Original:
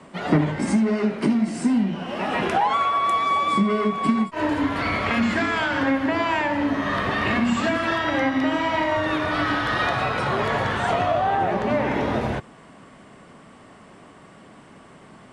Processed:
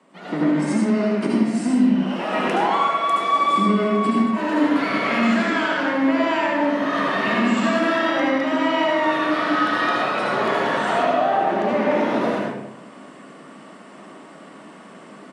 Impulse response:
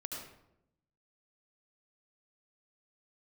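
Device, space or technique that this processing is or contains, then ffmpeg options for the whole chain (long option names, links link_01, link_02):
far laptop microphone: -filter_complex "[0:a]asplit=2[link_01][link_02];[link_02]adelay=67,lowpass=frequency=2000:poles=1,volume=-14dB,asplit=2[link_03][link_04];[link_04]adelay=67,lowpass=frequency=2000:poles=1,volume=0.48,asplit=2[link_05][link_06];[link_06]adelay=67,lowpass=frequency=2000:poles=1,volume=0.48,asplit=2[link_07][link_08];[link_08]adelay=67,lowpass=frequency=2000:poles=1,volume=0.48,asplit=2[link_09][link_10];[link_10]adelay=67,lowpass=frequency=2000:poles=1,volume=0.48[link_11];[link_01][link_03][link_05][link_07][link_09][link_11]amix=inputs=6:normalize=0[link_12];[1:a]atrim=start_sample=2205[link_13];[link_12][link_13]afir=irnorm=-1:irlink=0,highpass=frequency=190:width=0.5412,highpass=frequency=190:width=1.3066,dynaudnorm=framelen=180:gausssize=5:maxgain=11.5dB,volume=-6dB"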